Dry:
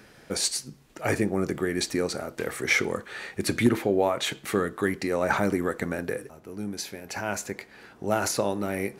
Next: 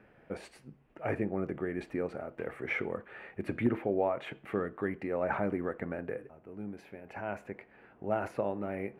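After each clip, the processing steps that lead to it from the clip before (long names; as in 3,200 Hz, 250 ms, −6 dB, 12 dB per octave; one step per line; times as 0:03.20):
drawn EQ curve 390 Hz 0 dB, 660 Hz +3 dB, 1,000 Hz −1 dB, 2,700 Hz −4 dB, 4,000 Hz −21 dB, 6,400 Hz −28 dB, 10,000 Hz −23 dB
level −7.5 dB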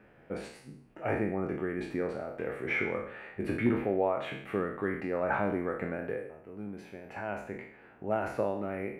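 peak hold with a decay on every bin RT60 0.62 s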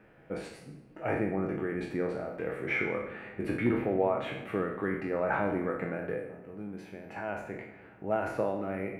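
rectangular room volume 2,300 cubic metres, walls mixed, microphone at 0.61 metres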